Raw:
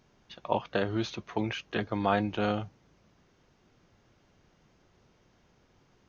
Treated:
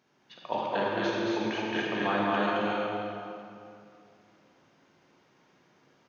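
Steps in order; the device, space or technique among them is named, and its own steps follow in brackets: stadium PA (HPF 170 Hz 12 dB/oct; bell 1700 Hz +4 dB 2.2 oct; loudspeakers at several distances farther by 75 m -3 dB, 92 m -4 dB; reverb RT60 2.5 s, pre-delay 34 ms, DRR -2.5 dB); gain -6 dB

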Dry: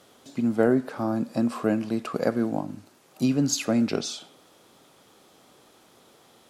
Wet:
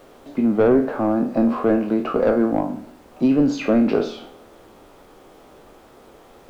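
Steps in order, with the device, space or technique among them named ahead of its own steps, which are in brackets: spectral trails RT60 0.39 s; tape answering machine (BPF 360–2900 Hz; soft clip -20.5 dBFS, distortion -13 dB; wow and flutter; white noise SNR 25 dB); tilt -3.5 dB/oct; spring tank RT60 1.3 s, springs 52/57 ms, DRR 18.5 dB; gain +7 dB

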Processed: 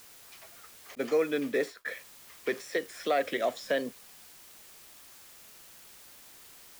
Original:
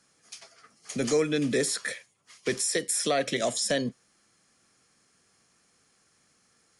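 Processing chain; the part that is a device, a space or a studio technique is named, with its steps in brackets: wax cylinder (BPF 350–2400 Hz; wow and flutter; white noise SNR 18 dB); 0.95–1.92 expander -31 dBFS

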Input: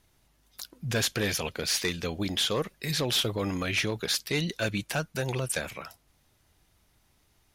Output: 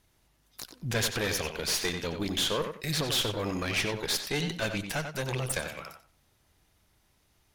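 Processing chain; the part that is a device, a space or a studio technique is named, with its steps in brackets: rockabilly slapback (tube stage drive 25 dB, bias 0.8; tape echo 92 ms, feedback 22%, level -6 dB, low-pass 4200 Hz); gain +3.5 dB

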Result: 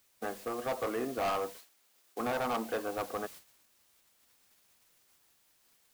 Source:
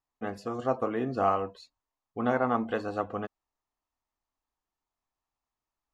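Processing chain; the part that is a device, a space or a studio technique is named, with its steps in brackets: aircraft radio (BPF 320–2500 Hz; hard clip -28.5 dBFS, distortion -6 dB; white noise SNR 13 dB; gate -48 dBFS, range -18 dB); 1.57–2.2 HPF 250 Hz 12 dB/oct

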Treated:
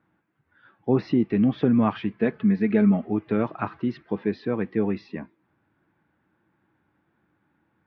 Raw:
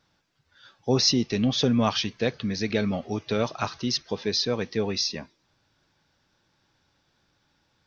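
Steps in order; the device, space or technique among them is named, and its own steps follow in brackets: bass cabinet (speaker cabinet 82–2100 Hz, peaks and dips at 200 Hz +6 dB, 320 Hz +8 dB, 560 Hz -4 dB); 2.17–3.05 comb 4.7 ms, depth 54%

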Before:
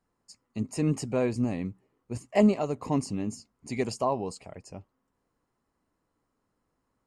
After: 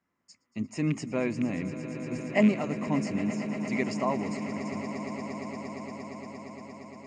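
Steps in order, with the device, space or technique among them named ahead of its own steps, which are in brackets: swelling echo 0.116 s, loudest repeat 8, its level -15 dB; car door speaker with a rattle (rattling part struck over -21 dBFS, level -27 dBFS; speaker cabinet 100–6700 Hz, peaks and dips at 120 Hz -6 dB, 450 Hz -8 dB, 810 Hz -5 dB, 2100 Hz +8 dB, 4300 Hz -7 dB)

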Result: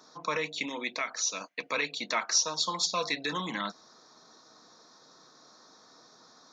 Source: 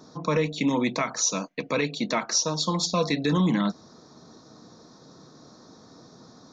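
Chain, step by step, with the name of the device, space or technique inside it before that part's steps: filter by subtraction (in parallel: LPF 1600 Hz 12 dB/oct + phase invert); 0.66–1.41 on the sum: ten-band EQ 125 Hz -10 dB, 1000 Hz -7 dB, 8000 Hz -7 dB; gain -2 dB

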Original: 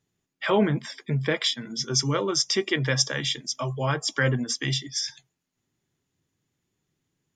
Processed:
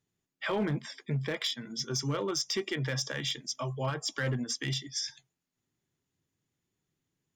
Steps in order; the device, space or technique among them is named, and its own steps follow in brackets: limiter into clipper (limiter -15.5 dBFS, peak gain reduction 7 dB; hard clip -19 dBFS, distortion -21 dB); gain -5.5 dB

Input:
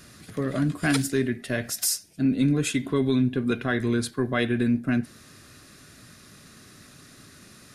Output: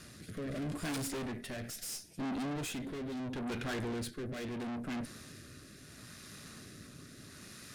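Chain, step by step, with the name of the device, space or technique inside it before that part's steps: overdriven rotary cabinet (tube stage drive 38 dB, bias 0.55; rotary speaker horn 0.75 Hz); gain +3 dB

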